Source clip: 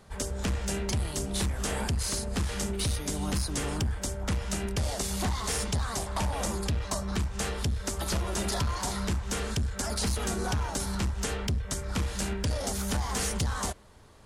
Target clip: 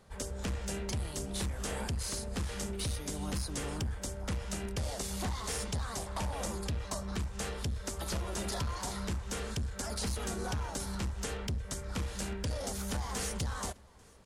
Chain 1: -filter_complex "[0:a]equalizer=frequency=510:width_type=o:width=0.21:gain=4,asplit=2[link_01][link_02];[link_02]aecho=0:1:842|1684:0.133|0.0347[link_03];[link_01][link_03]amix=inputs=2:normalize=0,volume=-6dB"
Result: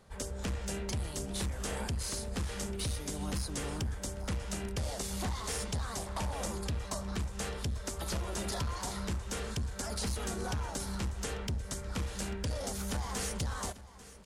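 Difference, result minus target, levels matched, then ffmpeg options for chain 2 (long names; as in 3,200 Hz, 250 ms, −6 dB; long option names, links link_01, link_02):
echo-to-direct +9 dB
-filter_complex "[0:a]equalizer=frequency=510:width_type=o:width=0.21:gain=4,asplit=2[link_01][link_02];[link_02]aecho=0:1:842|1684:0.0473|0.0123[link_03];[link_01][link_03]amix=inputs=2:normalize=0,volume=-6dB"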